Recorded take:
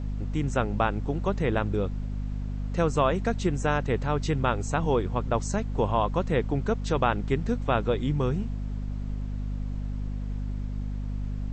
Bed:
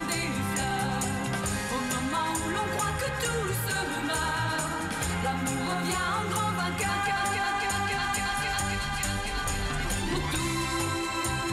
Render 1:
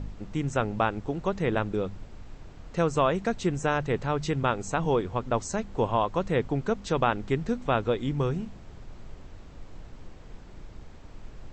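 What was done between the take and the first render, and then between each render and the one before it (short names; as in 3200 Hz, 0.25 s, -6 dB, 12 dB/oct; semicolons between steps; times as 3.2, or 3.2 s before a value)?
de-hum 50 Hz, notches 5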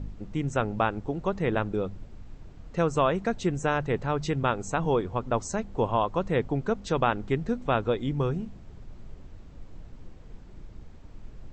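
denoiser 6 dB, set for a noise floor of -46 dBFS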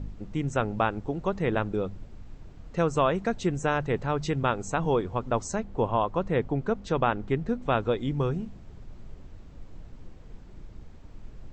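5.58–7.63 high shelf 4100 Hz -7.5 dB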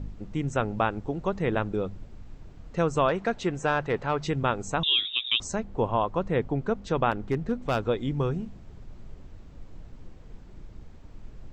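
3.08–4.27 overdrive pedal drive 10 dB, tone 2700 Hz, clips at -13 dBFS; 4.83–5.4 inverted band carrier 3700 Hz; 7.11–7.82 hard clip -19 dBFS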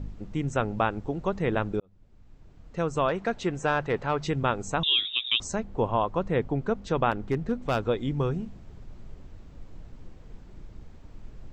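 1.8–3.91 fade in equal-power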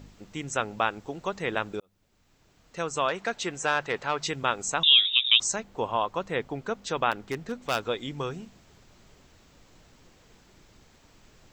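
tilt +3.5 dB/oct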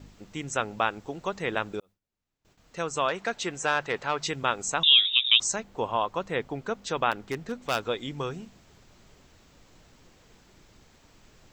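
gate with hold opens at -52 dBFS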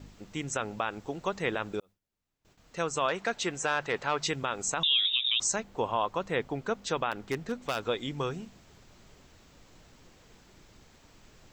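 limiter -17 dBFS, peak gain reduction 11 dB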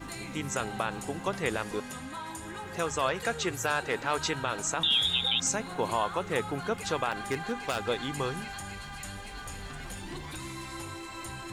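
add bed -11 dB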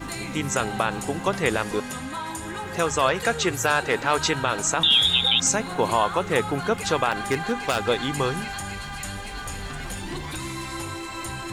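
gain +7.5 dB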